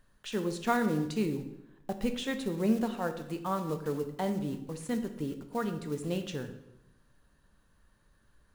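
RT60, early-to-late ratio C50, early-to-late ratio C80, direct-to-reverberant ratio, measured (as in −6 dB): 0.90 s, 10.5 dB, 12.5 dB, 6.5 dB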